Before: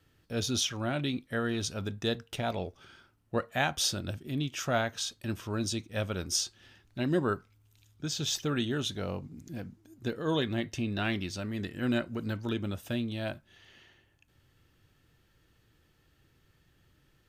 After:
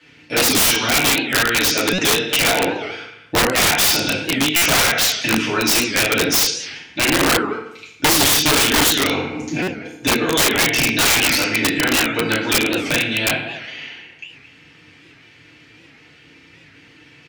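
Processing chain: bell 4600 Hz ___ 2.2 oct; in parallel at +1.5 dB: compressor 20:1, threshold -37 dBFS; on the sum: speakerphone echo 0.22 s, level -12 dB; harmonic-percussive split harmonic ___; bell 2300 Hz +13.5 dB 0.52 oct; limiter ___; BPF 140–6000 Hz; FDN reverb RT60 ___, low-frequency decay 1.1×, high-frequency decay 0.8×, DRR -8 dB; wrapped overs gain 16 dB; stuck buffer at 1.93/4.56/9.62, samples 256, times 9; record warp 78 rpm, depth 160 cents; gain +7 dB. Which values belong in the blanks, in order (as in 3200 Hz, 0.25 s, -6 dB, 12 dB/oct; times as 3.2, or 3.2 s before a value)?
+4 dB, -14 dB, -15 dBFS, 0.76 s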